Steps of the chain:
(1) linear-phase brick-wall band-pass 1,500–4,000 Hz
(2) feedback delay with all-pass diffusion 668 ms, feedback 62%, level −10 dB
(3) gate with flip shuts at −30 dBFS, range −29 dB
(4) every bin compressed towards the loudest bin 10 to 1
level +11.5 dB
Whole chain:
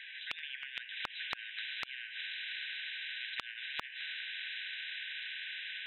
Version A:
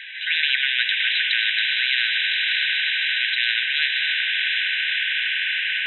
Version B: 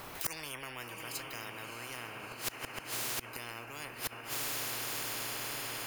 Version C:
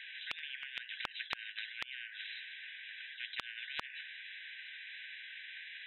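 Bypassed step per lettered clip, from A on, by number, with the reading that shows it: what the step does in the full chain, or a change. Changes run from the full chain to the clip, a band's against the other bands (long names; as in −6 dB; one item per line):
3, change in crest factor −10.5 dB
1, 500 Hz band +19.5 dB
2, change in momentary loudness spread +3 LU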